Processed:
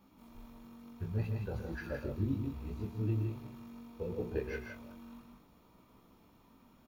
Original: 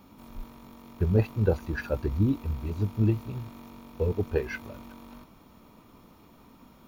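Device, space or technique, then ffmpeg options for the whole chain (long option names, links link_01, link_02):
double-tracked vocal: -filter_complex "[0:a]asettb=1/sr,asplit=3[link_01][link_02][link_03];[link_01]atrim=end=0.984[link_04];[link_02]atrim=start=0.98:end=1.53,asetpts=PTS-STARTPTS,afade=type=in:duration=0.004:curve=qsin,afade=type=out:start_time=0.546:duration=0.004:curve=qsin,equalizer=frequency=360:width=0.64:gain=-7.5[link_05];[link_03]atrim=start=1.526[link_06];[link_04][link_05]acrossfade=duration=0.004:curve1=hsin:curve2=qsin[link_07];[link_07][link_06]acrossfade=duration=0.004:curve1=qsin:curve2=hsin,asplit=2[link_08][link_09];[link_09]adelay=30,volume=-11dB[link_10];[link_08][link_10]amix=inputs=2:normalize=0,flanger=delay=15.5:depth=6.6:speed=0.69,aecho=1:1:119.5|166.2:0.355|0.562,volume=-7.5dB"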